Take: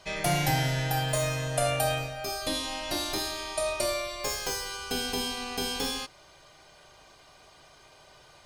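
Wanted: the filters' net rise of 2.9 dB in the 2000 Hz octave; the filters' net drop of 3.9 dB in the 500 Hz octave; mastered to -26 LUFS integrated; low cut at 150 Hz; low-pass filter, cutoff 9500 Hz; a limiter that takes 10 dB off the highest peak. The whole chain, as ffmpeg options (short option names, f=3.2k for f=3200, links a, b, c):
-af "highpass=150,lowpass=9.5k,equalizer=f=500:t=o:g=-5.5,equalizer=f=2k:t=o:g=4,volume=6.5dB,alimiter=limit=-17.5dB:level=0:latency=1"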